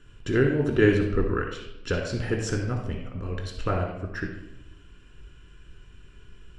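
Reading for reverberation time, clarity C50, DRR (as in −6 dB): 0.90 s, 4.0 dB, −0.5 dB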